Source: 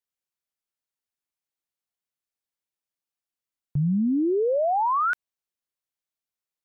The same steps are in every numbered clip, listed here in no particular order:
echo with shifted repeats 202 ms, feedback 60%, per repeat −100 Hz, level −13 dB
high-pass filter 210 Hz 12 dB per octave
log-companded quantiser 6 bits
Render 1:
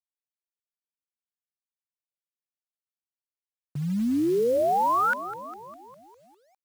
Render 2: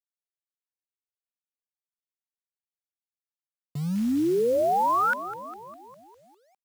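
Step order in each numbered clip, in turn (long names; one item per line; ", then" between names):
echo with shifted repeats, then high-pass filter, then log-companded quantiser
echo with shifted repeats, then log-companded quantiser, then high-pass filter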